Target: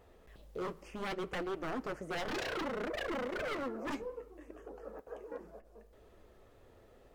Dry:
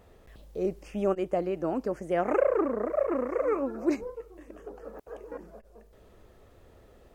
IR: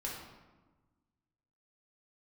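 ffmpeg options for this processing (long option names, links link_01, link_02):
-filter_complex "[0:a]bass=frequency=250:gain=-3,treble=frequency=4000:gain=-2,aeval=exprs='0.0376*(abs(mod(val(0)/0.0376+3,4)-2)-1)':channel_layout=same,flanger=delay=2.3:depth=7.1:regen=-61:speed=0.66:shape=triangular,asplit=2[link_01][link_02];[1:a]atrim=start_sample=2205[link_03];[link_02][link_03]afir=irnorm=-1:irlink=0,volume=-18.5dB[link_04];[link_01][link_04]amix=inputs=2:normalize=0"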